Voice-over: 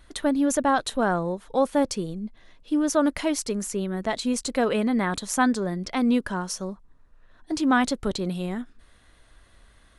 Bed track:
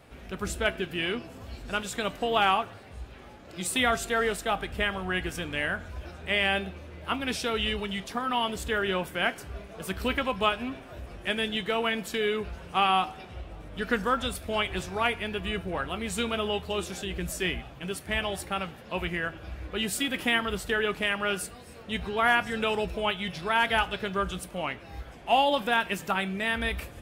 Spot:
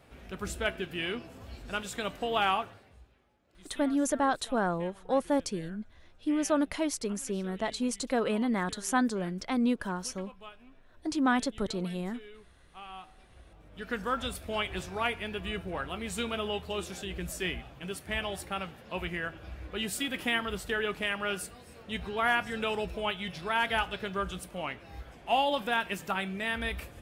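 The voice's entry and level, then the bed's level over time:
3.55 s, −5.5 dB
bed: 0:02.65 −4 dB
0:03.27 −23 dB
0:12.84 −23 dB
0:14.18 −4 dB

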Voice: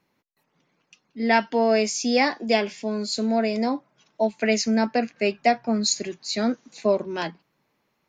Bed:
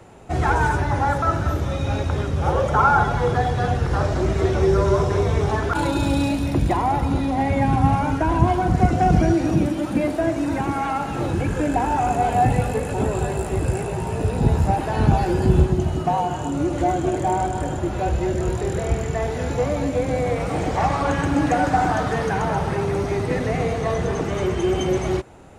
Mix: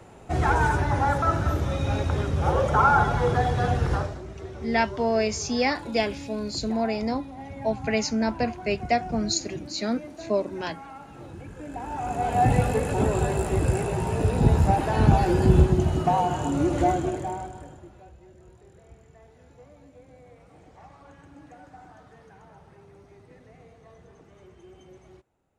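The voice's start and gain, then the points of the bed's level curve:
3.45 s, −3.5 dB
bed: 0:03.93 −2.5 dB
0:04.23 −18.5 dB
0:11.56 −18.5 dB
0:12.53 −1 dB
0:16.87 −1 dB
0:18.16 −29 dB

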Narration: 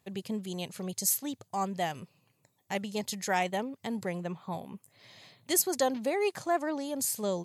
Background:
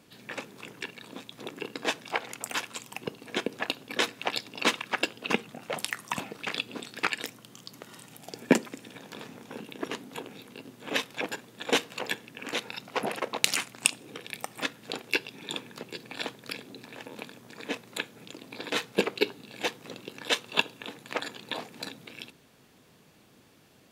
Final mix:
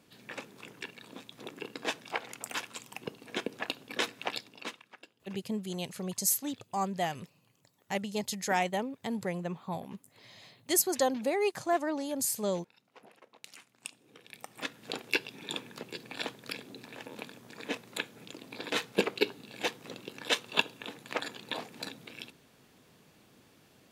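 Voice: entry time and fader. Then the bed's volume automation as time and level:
5.20 s, 0.0 dB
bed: 0:04.32 −4.5 dB
0:05.01 −26 dB
0:13.43 −26 dB
0:14.89 −2 dB

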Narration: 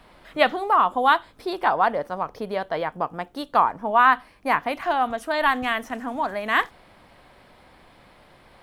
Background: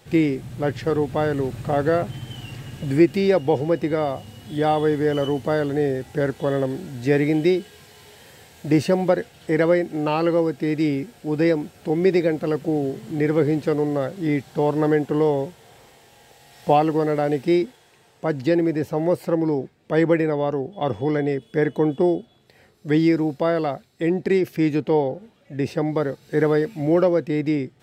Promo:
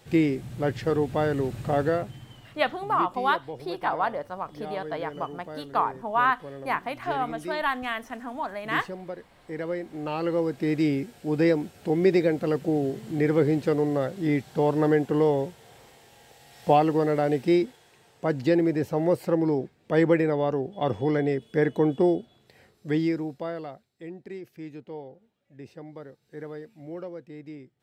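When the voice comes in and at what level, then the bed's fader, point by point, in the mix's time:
2.20 s, −6.0 dB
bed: 0:01.81 −3 dB
0:02.57 −18 dB
0:09.22 −18 dB
0:10.70 −2.5 dB
0:22.59 −2.5 dB
0:24.18 −19.5 dB

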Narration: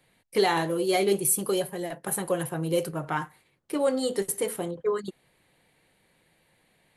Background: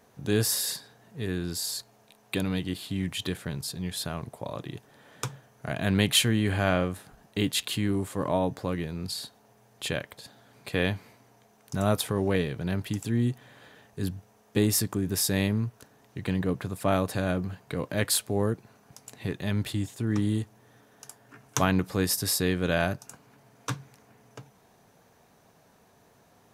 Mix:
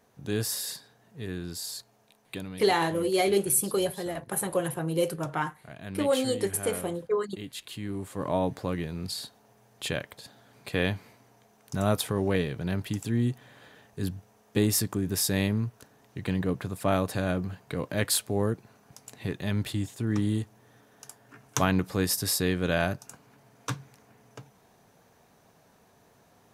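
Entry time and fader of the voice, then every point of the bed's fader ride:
2.25 s, −0.5 dB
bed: 0:02.17 −4.5 dB
0:02.67 −13.5 dB
0:07.48 −13.5 dB
0:08.39 −0.5 dB

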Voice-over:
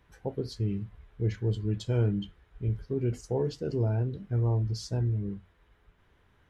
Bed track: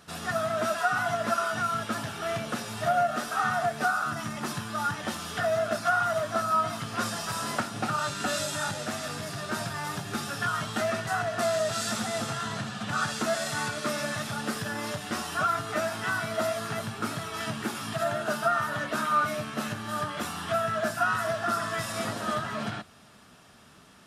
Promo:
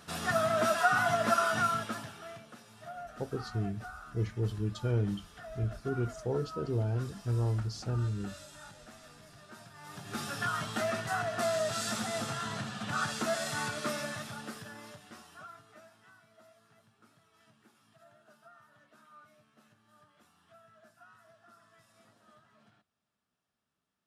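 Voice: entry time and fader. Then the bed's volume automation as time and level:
2.95 s, −3.5 dB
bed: 0:01.65 0 dB
0:02.48 −19.5 dB
0:09.73 −19.5 dB
0:10.21 −4 dB
0:13.87 −4 dB
0:16.24 −32 dB

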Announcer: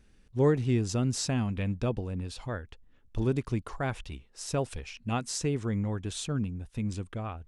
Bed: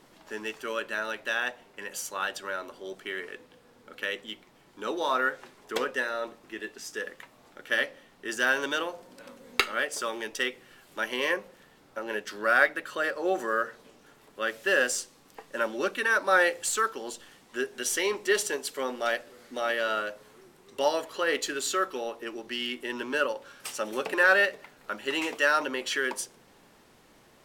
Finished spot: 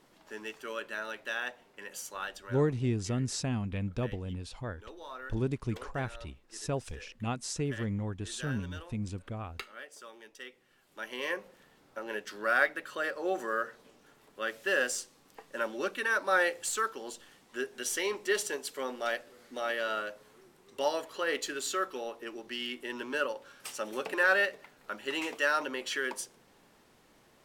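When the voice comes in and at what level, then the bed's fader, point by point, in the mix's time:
2.15 s, −3.5 dB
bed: 0:02.14 −6 dB
0:03.00 −17.5 dB
0:10.41 −17.5 dB
0:11.47 −4.5 dB

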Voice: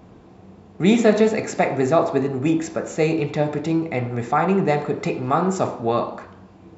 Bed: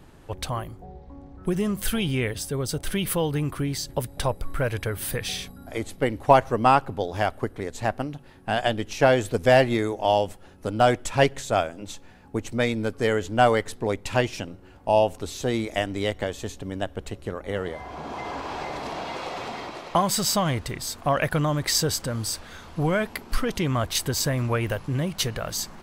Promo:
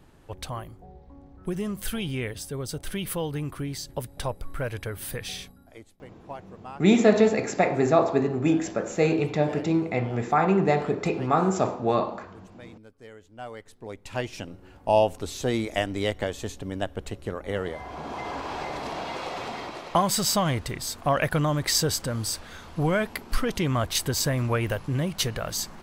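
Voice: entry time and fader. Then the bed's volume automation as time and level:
6.00 s, −2.5 dB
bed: 0:05.42 −5 dB
0:05.99 −23.5 dB
0:13.29 −23.5 dB
0:14.60 −0.5 dB

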